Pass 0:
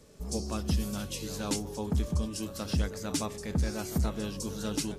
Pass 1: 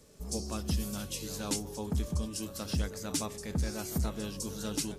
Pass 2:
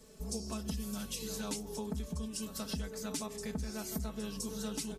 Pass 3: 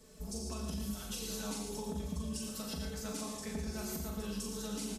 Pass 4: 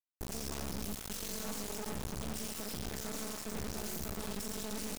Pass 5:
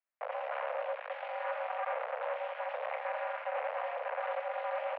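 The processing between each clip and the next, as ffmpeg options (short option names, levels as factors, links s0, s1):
-af "highshelf=f=5700:g=6,volume=0.708"
-af "aecho=1:1:4.6:0.9,acompressor=threshold=0.0178:ratio=3,volume=0.841"
-filter_complex "[0:a]asplit=2[s0][s1];[s1]aecho=0:1:40|86|138.9|199.7|269.7:0.631|0.398|0.251|0.158|0.1[s2];[s0][s2]amix=inputs=2:normalize=0,alimiter=level_in=1.5:limit=0.0631:level=0:latency=1:release=191,volume=0.668,asplit=2[s3][s4];[s4]aecho=0:1:114:0.447[s5];[s3][s5]amix=inputs=2:normalize=0,volume=0.794"
-filter_complex "[0:a]acrossover=split=390|1100|4700[s0][s1][s2][s3];[s2]alimiter=level_in=13.3:limit=0.0631:level=0:latency=1,volume=0.075[s4];[s0][s1][s4][s3]amix=inputs=4:normalize=0,asoftclip=type=tanh:threshold=0.0266,acrusher=bits=4:dc=4:mix=0:aa=0.000001,volume=1.41"
-af "highpass=f=180:t=q:w=0.5412,highpass=f=180:t=q:w=1.307,lowpass=f=2200:t=q:w=0.5176,lowpass=f=2200:t=q:w=0.7071,lowpass=f=2200:t=q:w=1.932,afreqshift=340,volume=2.37"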